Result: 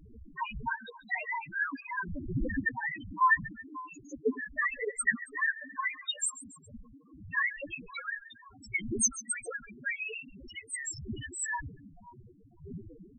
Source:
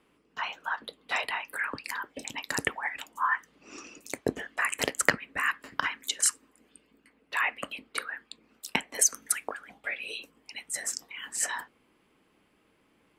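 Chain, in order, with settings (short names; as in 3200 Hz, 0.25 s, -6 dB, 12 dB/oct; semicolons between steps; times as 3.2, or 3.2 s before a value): wind noise 400 Hz -43 dBFS; split-band echo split 1200 Hz, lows 0.535 s, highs 0.137 s, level -16 dB; loudest bins only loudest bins 2; gain +8 dB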